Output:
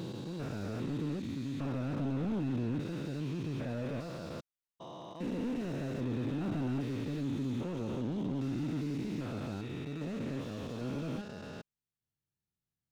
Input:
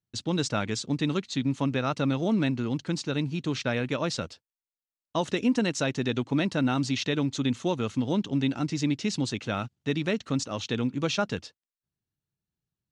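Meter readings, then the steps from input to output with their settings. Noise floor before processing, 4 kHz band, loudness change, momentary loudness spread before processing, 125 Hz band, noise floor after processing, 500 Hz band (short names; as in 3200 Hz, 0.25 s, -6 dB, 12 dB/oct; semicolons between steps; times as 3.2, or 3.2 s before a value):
under -85 dBFS, -17.0 dB, -8.5 dB, 5 LU, -6.0 dB, under -85 dBFS, -10.0 dB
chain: stepped spectrum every 0.4 s; slew limiter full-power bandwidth 12 Hz; gain -3 dB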